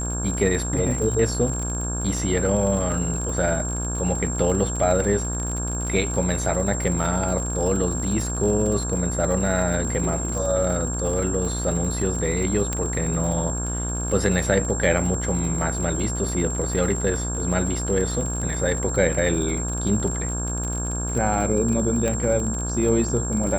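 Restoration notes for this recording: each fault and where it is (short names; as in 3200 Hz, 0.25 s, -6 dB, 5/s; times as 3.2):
buzz 60 Hz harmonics 28 -28 dBFS
crackle 54/s -28 dBFS
tone 7500 Hz -29 dBFS
12.73 pop -11 dBFS
22.08 pop -12 dBFS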